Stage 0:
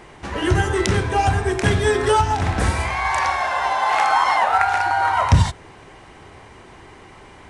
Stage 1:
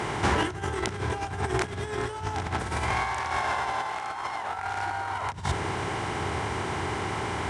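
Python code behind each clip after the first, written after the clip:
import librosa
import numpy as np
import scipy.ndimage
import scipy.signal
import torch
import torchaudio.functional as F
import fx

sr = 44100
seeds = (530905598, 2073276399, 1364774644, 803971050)

y = fx.bin_compress(x, sr, power=0.6)
y = scipy.signal.sosfilt(scipy.signal.butter(4, 70.0, 'highpass', fs=sr, output='sos'), y)
y = fx.over_compress(y, sr, threshold_db=-20.0, ratio=-0.5)
y = F.gain(torch.from_numpy(y), -7.5).numpy()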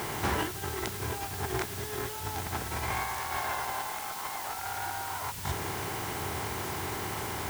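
y = fx.quant_dither(x, sr, seeds[0], bits=6, dither='triangular')
y = F.gain(torch.from_numpy(y), -5.5).numpy()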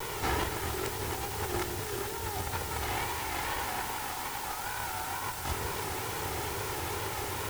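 y = fx.lower_of_two(x, sr, delay_ms=2.2)
y = fx.wow_flutter(y, sr, seeds[1], rate_hz=2.1, depth_cents=110.0)
y = fx.echo_alternate(y, sr, ms=136, hz=830.0, feedback_pct=80, wet_db=-5.5)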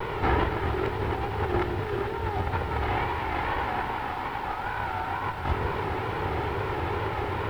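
y = fx.air_absorb(x, sr, metres=470.0)
y = F.gain(torch.from_numpy(y), 8.5).numpy()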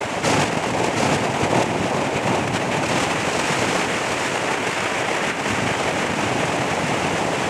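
y = fx.tracing_dist(x, sr, depth_ms=0.48)
y = fx.noise_vocoder(y, sr, seeds[2], bands=4)
y = y + 10.0 ** (-3.5 / 20.0) * np.pad(y, (int(727 * sr / 1000.0), 0))[:len(y)]
y = F.gain(torch.from_numpy(y), 7.5).numpy()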